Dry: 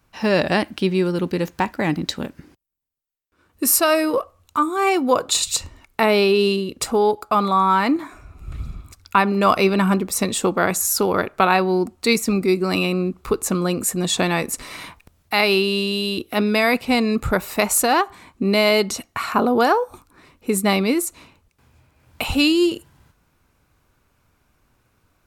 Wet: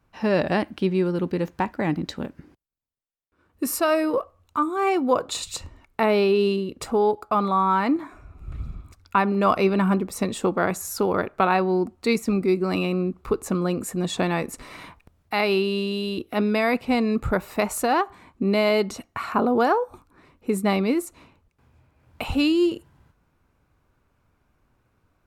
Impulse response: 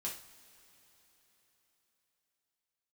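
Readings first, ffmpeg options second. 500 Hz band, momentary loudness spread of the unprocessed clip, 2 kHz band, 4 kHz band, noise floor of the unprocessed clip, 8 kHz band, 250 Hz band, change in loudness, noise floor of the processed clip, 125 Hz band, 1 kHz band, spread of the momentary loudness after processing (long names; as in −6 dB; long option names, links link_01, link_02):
−3.0 dB, 10 LU, −6.5 dB, −9.0 dB, −65 dBFS, −12.0 dB, −2.5 dB, −4.0 dB, −68 dBFS, −2.5 dB, −4.0 dB, 13 LU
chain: -af "highshelf=frequency=2700:gain=-10.5,volume=-2.5dB"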